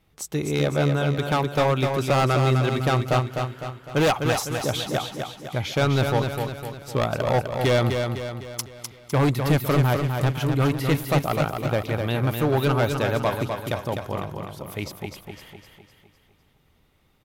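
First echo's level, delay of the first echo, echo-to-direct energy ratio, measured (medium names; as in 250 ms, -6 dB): -5.5 dB, 253 ms, -4.5 dB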